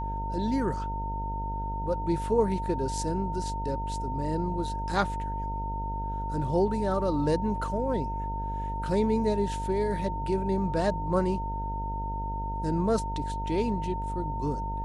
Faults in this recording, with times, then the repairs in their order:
buzz 50 Hz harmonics 19 -34 dBFS
tone 910 Hz -33 dBFS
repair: de-hum 50 Hz, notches 19; notch 910 Hz, Q 30

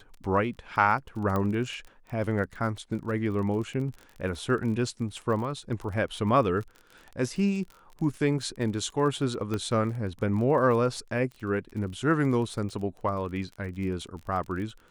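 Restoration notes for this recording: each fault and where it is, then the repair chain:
crackle 28/s -36 dBFS
1.36 pop -17 dBFS
9.54 pop -18 dBFS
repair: de-click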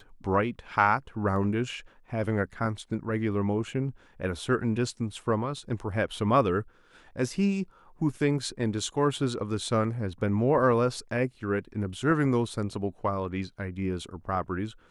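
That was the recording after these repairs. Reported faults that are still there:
1.36 pop

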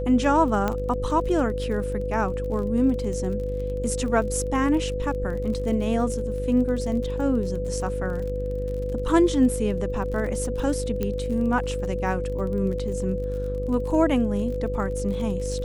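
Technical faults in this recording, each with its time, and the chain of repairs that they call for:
buzz 50 Hz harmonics 12 -30 dBFS
crackle 35/s -33 dBFS
tone 500 Hz -29 dBFS
0.68 pop -12 dBFS
11.03 pop -14 dBFS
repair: de-click; de-hum 50 Hz, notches 12; notch 500 Hz, Q 30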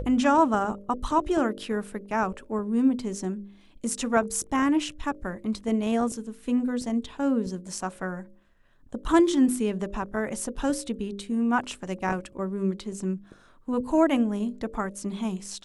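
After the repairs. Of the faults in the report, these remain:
none

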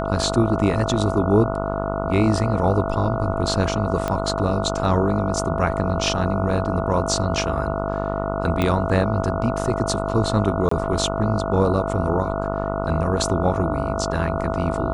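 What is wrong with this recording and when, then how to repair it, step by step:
buzz 50 Hz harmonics 29 -26 dBFS
tone 660 Hz -27 dBFS
4.08 pop -10 dBFS
8.62 pop -9 dBFS
10.69–10.71 gap 24 ms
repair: de-click; notch 660 Hz, Q 30; de-hum 50 Hz, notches 29; interpolate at 10.69, 24 ms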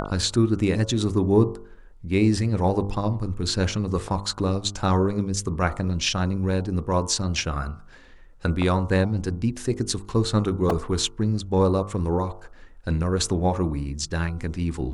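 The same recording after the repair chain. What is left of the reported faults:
4.08 pop

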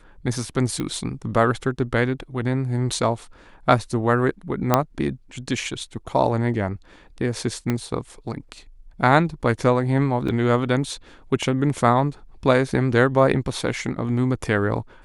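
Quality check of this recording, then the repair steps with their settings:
0.8 pop -15 dBFS
4.74 pop -2 dBFS
7.7 pop -10 dBFS
10.28–10.29 gap 5 ms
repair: de-click; interpolate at 10.28, 5 ms

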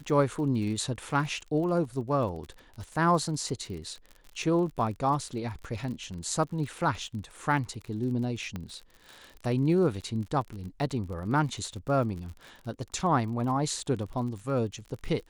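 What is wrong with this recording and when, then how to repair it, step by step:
crackle 45/s -37 dBFS
8.56 pop -22 dBFS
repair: de-click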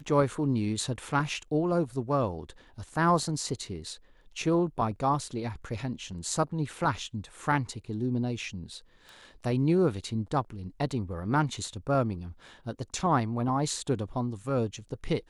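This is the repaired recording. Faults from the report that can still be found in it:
8.56 pop

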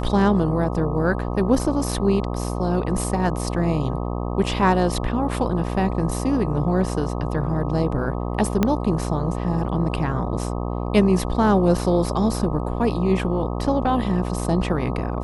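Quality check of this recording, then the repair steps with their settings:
buzz 60 Hz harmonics 21 -26 dBFS
8.63 pop -6 dBFS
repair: de-click; de-hum 60 Hz, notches 21

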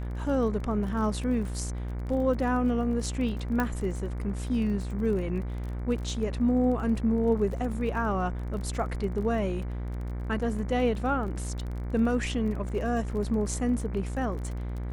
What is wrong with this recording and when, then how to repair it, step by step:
buzz 60 Hz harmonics 39 -33 dBFS
crackle 27/s -36 dBFS
3.6 pop -15 dBFS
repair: de-click; de-hum 60 Hz, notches 39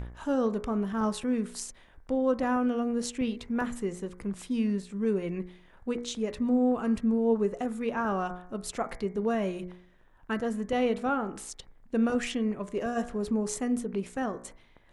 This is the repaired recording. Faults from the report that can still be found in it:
3.6 pop

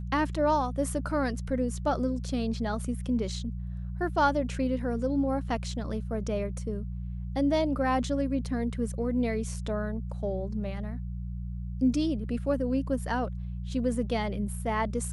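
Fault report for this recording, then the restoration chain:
hum 60 Hz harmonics 3 -35 dBFS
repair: de-hum 60 Hz, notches 3

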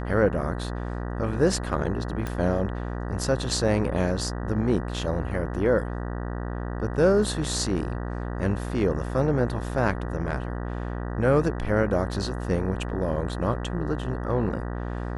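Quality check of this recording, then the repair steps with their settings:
buzz 60 Hz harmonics 32 -31 dBFS
2.27 pop -17 dBFS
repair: de-click; de-hum 60 Hz, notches 32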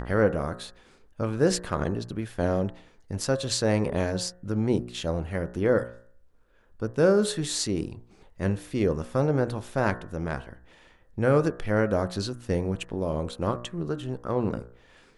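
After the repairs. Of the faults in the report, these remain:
none

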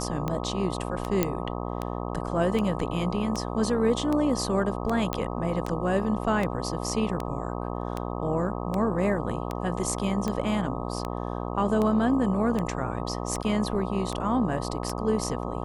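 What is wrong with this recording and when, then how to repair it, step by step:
buzz 60 Hz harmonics 21 -32 dBFS
tick 78 rpm -16 dBFS
1.23 pop -8 dBFS
5.13 pop -12 dBFS
13.43–13.44 gap 6.7 ms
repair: de-click; de-hum 60 Hz, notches 21; interpolate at 13.43, 6.7 ms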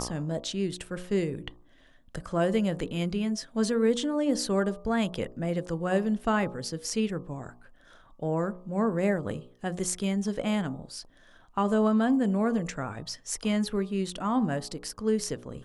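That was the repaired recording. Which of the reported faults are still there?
none

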